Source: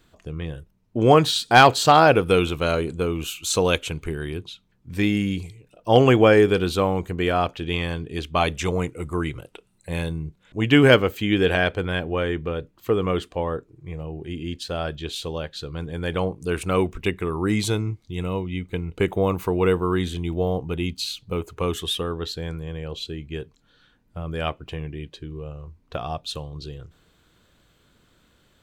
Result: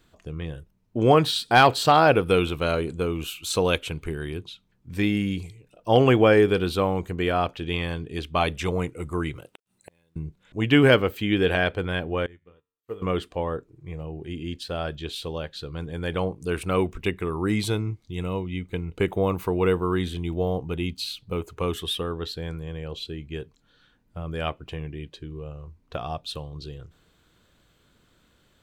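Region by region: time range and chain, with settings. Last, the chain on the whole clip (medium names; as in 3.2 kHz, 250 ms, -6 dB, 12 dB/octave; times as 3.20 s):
9.36–10.16 s: high-pass 150 Hz 6 dB/octave + inverted gate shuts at -25 dBFS, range -36 dB + companded quantiser 8-bit
12.26–13.02 s: feedback comb 91 Hz, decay 0.65 s, mix 80% + upward expansion 2.5:1, over -47 dBFS
whole clip: dynamic bell 6.7 kHz, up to -7 dB, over -51 dBFS, Q 2.8; loudness maximiser +3.5 dB; trim -5.5 dB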